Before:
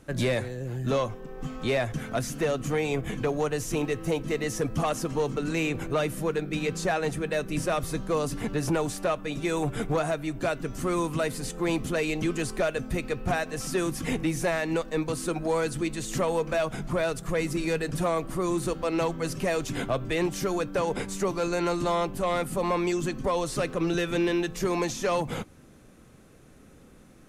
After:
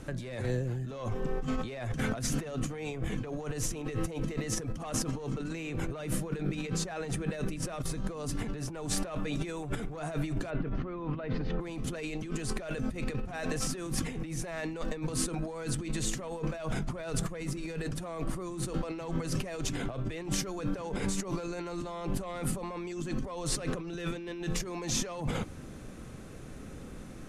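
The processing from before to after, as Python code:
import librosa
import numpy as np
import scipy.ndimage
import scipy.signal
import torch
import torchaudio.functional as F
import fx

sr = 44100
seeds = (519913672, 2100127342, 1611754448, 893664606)

y = fx.gaussian_blur(x, sr, sigma=2.9, at=(10.49, 11.6), fade=0.02)
y = scipy.signal.sosfilt(scipy.signal.butter(2, 11000.0, 'lowpass', fs=sr, output='sos'), y)
y = fx.low_shelf(y, sr, hz=130.0, db=5.0)
y = fx.over_compress(y, sr, threshold_db=-35.0, ratio=-1.0)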